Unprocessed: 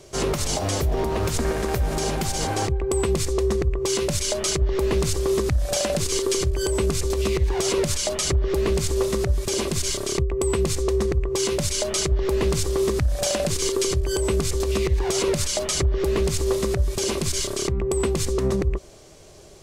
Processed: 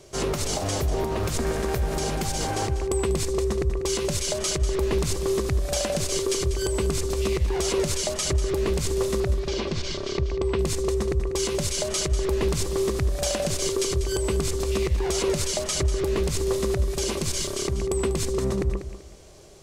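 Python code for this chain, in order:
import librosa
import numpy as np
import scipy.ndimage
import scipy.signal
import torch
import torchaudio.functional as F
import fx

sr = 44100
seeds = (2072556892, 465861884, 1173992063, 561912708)

p1 = fx.lowpass(x, sr, hz=5000.0, slope=24, at=(9.2, 10.59))
p2 = p1 + fx.echo_feedback(p1, sr, ms=193, feedback_pct=27, wet_db=-11.5, dry=0)
y = p2 * 10.0 ** (-2.5 / 20.0)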